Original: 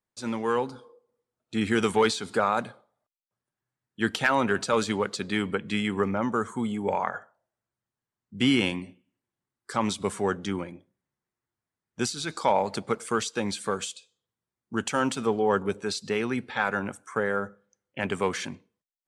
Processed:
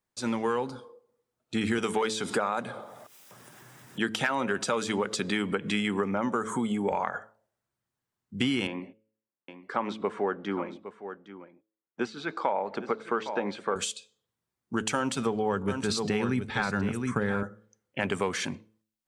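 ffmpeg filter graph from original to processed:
-filter_complex "[0:a]asettb=1/sr,asplit=3[a][b][c];[a]atrim=end=1.784[d];[b]atrim=start=1.78:end=6.92,asetpts=PTS-STARTPTS,afade=t=in:d=0.004:c=qsin,afade=t=out:st=5.136:d=0.004:c=qsin,bandreject=f=4.3k:w=9.4,acompressor=mode=upward:threshold=-26dB:ratio=2.5:attack=3.2:release=140:knee=2.83:detection=peak,highpass=130[e];[c]atrim=start=6.916[f];[d][e]acrossfade=d=0.004:c1=hsin:c2=qsin[g];[g][f]acrossfade=d=0.004:c1=qsin:c2=hsin,asettb=1/sr,asplit=3[h][i][j];[h]atrim=end=8.674[k];[i]atrim=start=8.67:end=13.76,asetpts=PTS-STARTPTS,afade=t=in:d=0.004:c=qsin,afade=t=out:st=5.086:d=0.004:c=qsin,agate=range=-12dB:threshold=-51dB:ratio=16:release=100:detection=peak,highpass=270,lowpass=2k,aecho=1:1:811:0.178,atrim=end_sample=224469[l];[j]atrim=start=13.756[m];[k][l]acrossfade=d=0.004:c1=hsin:c2=qsin[n];[n][m]acrossfade=d=0.004:c1=qsin:c2=hsin,asettb=1/sr,asplit=3[o][p][q];[o]atrim=end=14.964[r];[p]atrim=start=14.96:end=17.43,asetpts=PTS-STARTPTS,afade=t=in:d=0.004:c=qsin,afade=t=out:st=2.466:d=0.004:c=qsin,asubboost=boost=6.5:cutoff=250,aecho=1:1:719:0.376,atrim=end_sample=108927[s];[q]atrim=start=17.426[t];[r][s]acrossfade=d=0.004:c1=hsin:c2=qsin[u];[u][t]acrossfade=d=0.004:c1=qsin:c2=hsin,bandreject=f=108.8:t=h:w=4,bandreject=f=217.6:t=h:w=4,bandreject=f=326.4:t=h:w=4,bandreject=f=435.2:t=h:w=4,bandreject=f=544:t=h:w=4,acompressor=threshold=-27dB:ratio=6,volume=3dB"

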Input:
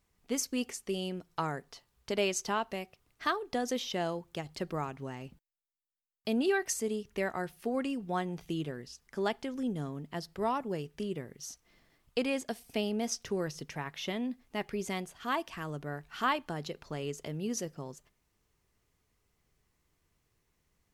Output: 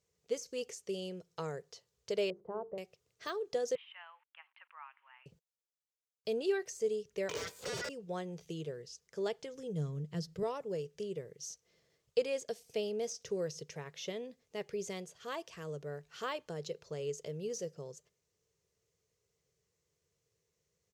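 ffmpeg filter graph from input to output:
-filter_complex "[0:a]asettb=1/sr,asplit=3[a][b][c];[a]atrim=end=2.304[d];[b]atrim=start=2.3:end=2.78,asetpts=PTS-STARTPTS,afade=t=in:d=0.004:c=qsin,afade=t=out:st=0.476:d=0.004:c=qsin,lowpass=f=1k:w=0.5412,lowpass=f=1k:w=1.3066,bandreject=f=50:t=h:w=6,bandreject=f=100:t=h:w=6,bandreject=f=150:t=h:w=6,bandreject=f=200:t=h:w=6,bandreject=f=250:t=h:w=6,bandreject=f=300:t=h:w=6,bandreject=f=350:t=h:w=6,bandreject=f=400:t=h:w=6,bandreject=f=450:t=h:w=6[e];[c]atrim=start=2.776[f];[d][e]acrossfade=d=0.004:c1=hsin:c2=qsin[g];[g][f]acrossfade=d=0.004:c1=qsin:c2=hsin,asettb=1/sr,asplit=3[h][i][j];[h]atrim=end=3.754[k];[i]atrim=start=3.75:end=5.26,asetpts=PTS-STARTPTS,afade=t=in:d=0.004:c=qsin,afade=t=out:st=1.506:d=0.004:c=qsin,aeval=exprs='val(0)*gte(abs(val(0)),0.002)':c=same,asuperpass=centerf=1600:order=12:qfactor=0.8[l];[j]atrim=start=5.256[m];[k][l]acrossfade=d=0.004:c1=hsin:c2=qsin[n];[n][m]acrossfade=d=0.004:c1=qsin:c2=hsin,asettb=1/sr,asplit=3[o][p][q];[o]atrim=end=7.294[r];[p]atrim=start=7.29:end=7.89,asetpts=PTS-STARTPTS,afade=t=in:d=0.004:c=qsin,afade=t=out:st=0.596:d=0.004:c=qsin,highpass=f=480:p=1,aeval=exprs='val(0)*sin(2*PI*1700*n/s)':c=same,aeval=exprs='0.0631*sin(PI/2*7.94*val(0)/0.0631)':c=same[s];[q]atrim=start=7.886[t];[r][s]acrossfade=d=0.004:c1=hsin:c2=qsin[u];[u][t]acrossfade=d=0.004:c1=qsin:c2=hsin,asettb=1/sr,asplit=3[v][w][x];[v]atrim=end=9.364[y];[w]atrim=start=9.36:end=10.43,asetpts=PTS-STARTPTS,afade=t=in:d=0.004:c=qsin,afade=t=out:st=1.066:d=0.004:c=qsin,asubboost=boost=10.5:cutoff=250,aecho=1:1:6.5:0.36,atrim=end_sample=47187[z];[x]atrim=start=10.426[aa];[y][z]acrossfade=d=0.004:c1=hsin:c2=qsin[ab];[ab][aa]acrossfade=d=0.004:c1=qsin:c2=hsin,highpass=96,deesser=0.9,firequalizer=gain_entry='entry(170,0);entry(250,-13);entry(460,9);entry(760,-7);entry(6500,6);entry(10000,-5)':delay=0.05:min_phase=1,volume=-4.5dB"

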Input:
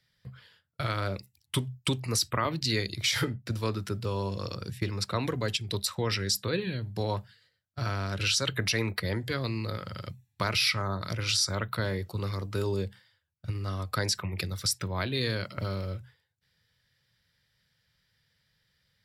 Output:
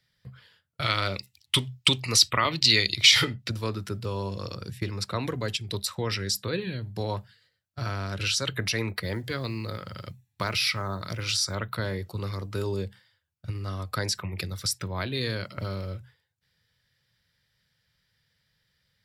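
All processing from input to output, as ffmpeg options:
-filter_complex "[0:a]asettb=1/sr,asplit=3[a][b][c];[a]atrim=end=0.824[d];[b]atrim=start=0.82:end=3.5,asetpts=PTS-STARTPTS,afade=t=in:d=0.004:c=qsin,afade=t=out:st=2.676:d=0.004:c=qsin,equalizer=f=3.3k:t=o:w=2.4:g=12.5,bandreject=f=1.6k:w=9.5[e];[c]atrim=start=3.496[f];[d][e]acrossfade=d=0.004:c1=hsin:c2=qsin[g];[g][f]acrossfade=d=0.004:c1=qsin:c2=hsin,asettb=1/sr,asplit=3[h][i][j];[h]atrim=end=8.994[k];[i]atrim=start=8.99:end=11.55,asetpts=PTS-STARTPTS,afade=t=in:d=0.004:c=qsin,afade=t=out:st=2.556:d=0.004:c=qsin,lowshelf=f=77:g=-2.5,acrusher=bits=9:mode=log:mix=0:aa=0.000001[l];[j]atrim=start=11.546[m];[k][l]acrossfade=d=0.004:c1=hsin:c2=qsin[n];[n][m]acrossfade=d=0.004:c1=qsin:c2=hsin"

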